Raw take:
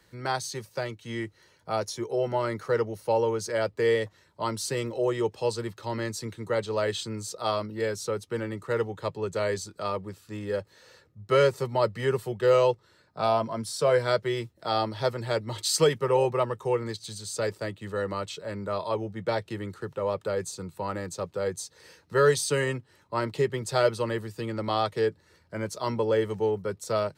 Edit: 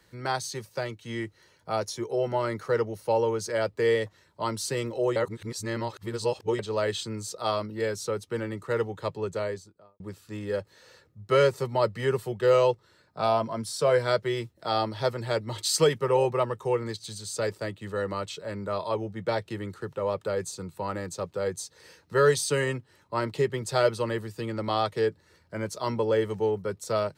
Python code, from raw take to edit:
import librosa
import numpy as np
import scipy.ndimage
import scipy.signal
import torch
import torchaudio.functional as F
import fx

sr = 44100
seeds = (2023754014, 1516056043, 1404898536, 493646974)

y = fx.studio_fade_out(x, sr, start_s=9.16, length_s=0.84)
y = fx.edit(y, sr, fx.reverse_span(start_s=5.16, length_s=1.43), tone=tone)